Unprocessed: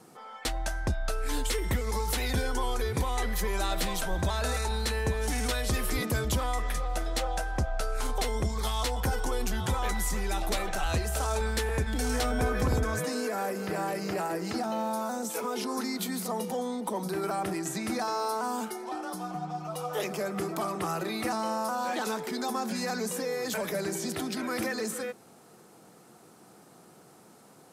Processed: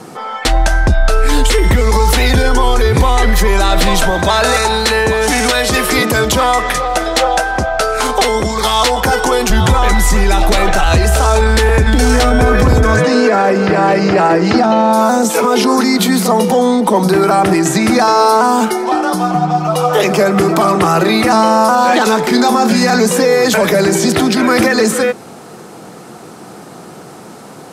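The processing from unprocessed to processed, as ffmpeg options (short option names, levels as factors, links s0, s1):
-filter_complex "[0:a]asettb=1/sr,asplit=3[s0][s1][s2];[s0]atrim=end=4.104[s3];[s1]atrim=start=4.1:end=9.5,asetpts=PTS-STARTPTS,afade=t=in:d=0.004:c=qsin,afade=t=out:st=5.396:d=0.004:c=qsin,highpass=f=300:p=1[s4];[s2]atrim=start=9.496[s5];[s3][s4]acrossfade=d=0.004:c1=hsin:c2=qsin[s6];[s6][s5]acrossfade=d=0.004:c1=qsin:c2=hsin,asettb=1/sr,asplit=3[s7][s8][s9];[s7]atrim=end=12.964[s10];[s8]atrim=start=12.96:end=14.93,asetpts=PTS-STARTPTS,afade=t=in:d=0.004:c=qsin,afade=t=out:st=1.966:d=0.004:c=qsin,lowpass=5200[s11];[s9]atrim=start=14.926[s12];[s10][s11]acrossfade=d=0.004:c1=hsin:c2=qsin[s13];[s13][s12]acrossfade=d=0.004:c1=qsin:c2=hsin,asettb=1/sr,asplit=3[s14][s15][s16];[s14]atrim=end=22.204[s17];[s15]atrim=start=22.2:end=22.96,asetpts=PTS-STARTPTS,afade=t=in:d=0.004:c=qsin,afade=t=out:st=0.756:d=0.004:c=qsin,asplit=2[s18][s19];[s19]adelay=33,volume=0.376[s20];[s18][s20]amix=inputs=2:normalize=0,atrim=end_sample=33516[s21];[s16]atrim=start=22.956[s22];[s17][s21]acrossfade=d=0.004:c1=hsin:c2=qsin[s23];[s23][s22]acrossfade=d=0.004:c1=qsin:c2=hsin,highshelf=f=9200:g=-10.5,alimiter=level_in=14.1:limit=0.891:release=50:level=0:latency=1,volume=0.891"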